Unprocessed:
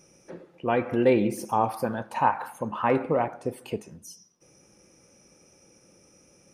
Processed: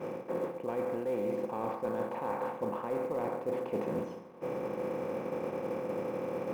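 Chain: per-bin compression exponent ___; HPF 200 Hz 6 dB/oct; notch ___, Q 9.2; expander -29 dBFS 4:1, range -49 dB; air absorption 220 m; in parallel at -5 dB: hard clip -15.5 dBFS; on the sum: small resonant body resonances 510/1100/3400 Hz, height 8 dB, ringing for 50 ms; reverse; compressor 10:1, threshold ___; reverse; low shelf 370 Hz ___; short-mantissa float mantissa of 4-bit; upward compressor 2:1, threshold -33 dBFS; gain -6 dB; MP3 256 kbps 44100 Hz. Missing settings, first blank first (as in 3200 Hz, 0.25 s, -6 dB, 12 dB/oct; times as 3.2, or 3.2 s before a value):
0.4, 5700 Hz, -28 dBFS, +7.5 dB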